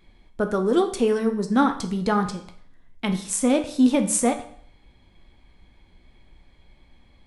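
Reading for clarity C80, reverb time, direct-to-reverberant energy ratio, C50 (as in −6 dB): 14.5 dB, 0.60 s, 6.0 dB, 11.0 dB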